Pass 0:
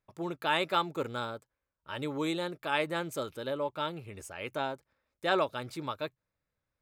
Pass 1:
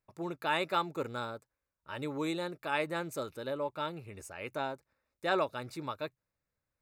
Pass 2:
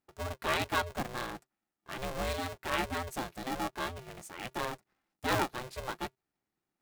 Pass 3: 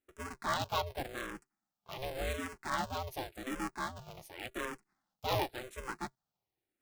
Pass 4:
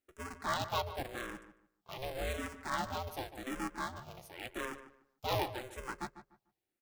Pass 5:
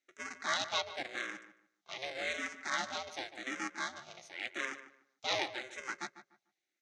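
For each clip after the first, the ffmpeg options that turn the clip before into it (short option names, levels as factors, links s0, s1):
-af "bandreject=f=3200:w=5.6,volume=0.794"
-af "aeval=exprs='val(0)*sgn(sin(2*PI*260*n/s))':c=same"
-filter_complex "[0:a]asplit=2[s0][s1];[s1]afreqshift=-0.89[s2];[s0][s2]amix=inputs=2:normalize=1"
-filter_complex "[0:a]asplit=2[s0][s1];[s1]adelay=148,lowpass=f=2300:p=1,volume=0.251,asplit=2[s2][s3];[s3]adelay=148,lowpass=f=2300:p=1,volume=0.25,asplit=2[s4][s5];[s5]adelay=148,lowpass=f=2300:p=1,volume=0.25[s6];[s0][s2][s4][s6]amix=inputs=4:normalize=0,volume=0.891"
-af "highpass=300,equalizer=f=450:t=q:w=4:g=-7,equalizer=f=970:t=q:w=4:g=-7,equalizer=f=1500:t=q:w=4:g=3,equalizer=f=2100:t=q:w=4:g=10,equalizer=f=3800:t=q:w=4:g=7,equalizer=f=6200:t=q:w=4:g=10,lowpass=f=7300:w=0.5412,lowpass=f=7300:w=1.3066"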